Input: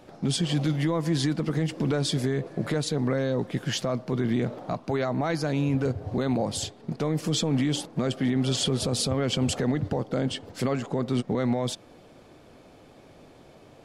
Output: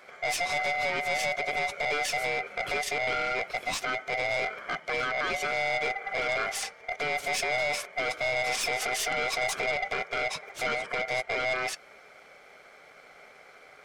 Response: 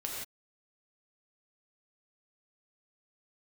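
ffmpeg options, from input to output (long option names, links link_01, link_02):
-af "afftfilt=real='real(if(lt(b,1008),b+24*(1-2*mod(floor(b/24),2)),b),0)':imag='imag(if(lt(b,1008),b+24*(1-2*mod(floor(b/24),2)),b),0)':win_size=2048:overlap=0.75,aeval=exprs='val(0)*sin(2*PI*1400*n/s)':channel_layout=same,aeval=exprs='0.178*(cos(1*acos(clip(val(0)/0.178,-1,1)))-cos(1*PI/2))+0.0178*(cos(4*acos(clip(val(0)/0.178,-1,1)))-cos(4*PI/2))+0.0355*(cos(5*acos(clip(val(0)/0.178,-1,1)))-cos(5*PI/2))':channel_layout=same,volume=-4dB"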